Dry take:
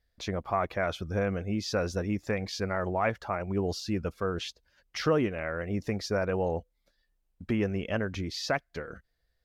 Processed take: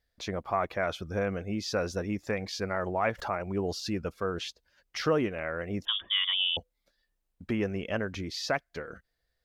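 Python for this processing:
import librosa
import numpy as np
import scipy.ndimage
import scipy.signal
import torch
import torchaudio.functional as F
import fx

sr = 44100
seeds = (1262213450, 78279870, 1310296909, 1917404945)

y = fx.freq_invert(x, sr, carrier_hz=3500, at=(5.85, 6.57))
y = fx.low_shelf(y, sr, hz=160.0, db=-5.5)
y = fx.pre_swell(y, sr, db_per_s=120.0, at=(3.17, 3.9), fade=0.02)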